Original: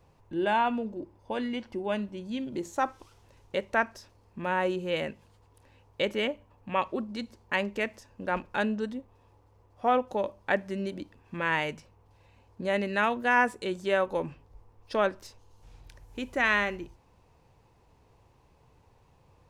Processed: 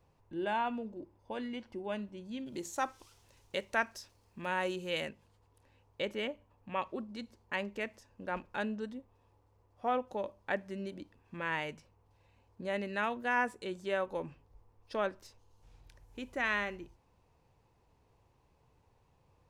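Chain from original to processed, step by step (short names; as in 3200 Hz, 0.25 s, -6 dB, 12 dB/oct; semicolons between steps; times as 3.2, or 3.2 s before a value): 2.46–5.09 high shelf 2500 Hz +11 dB; gain -7.5 dB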